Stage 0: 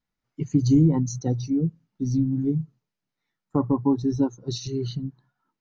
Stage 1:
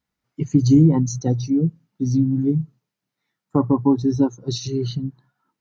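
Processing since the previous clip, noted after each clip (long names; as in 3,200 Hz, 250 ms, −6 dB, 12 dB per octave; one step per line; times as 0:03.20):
high-pass filter 44 Hz
level +4.5 dB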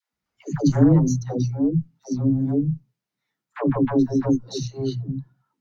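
dynamic equaliser 2,700 Hz, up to −4 dB, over −42 dBFS, Q 0.84
harmonic generator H 2 −10 dB, 5 −19 dB, 7 −22 dB, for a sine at −4.5 dBFS
all-pass dispersion lows, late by 143 ms, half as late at 400 Hz
level −3 dB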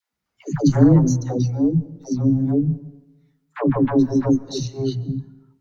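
dense smooth reverb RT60 1.1 s, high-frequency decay 0.55×, pre-delay 120 ms, DRR 19.5 dB
level +2.5 dB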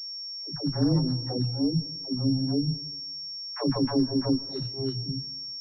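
fade in at the beginning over 1.30 s
low-pass that shuts in the quiet parts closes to 2,000 Hz, open at −17 dBFS
switching amplifier with a slow clock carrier 5,500 Hz
level −7.5 dB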